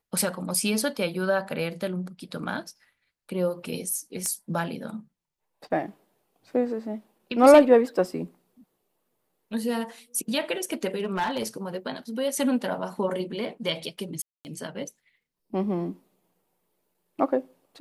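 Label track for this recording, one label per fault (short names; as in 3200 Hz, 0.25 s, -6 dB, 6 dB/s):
4.260000	4.260000	pop -16 dBFS
10.990000	11.480000	clipped -22 dBFS
14.220000	14.450000	gap 0.229 s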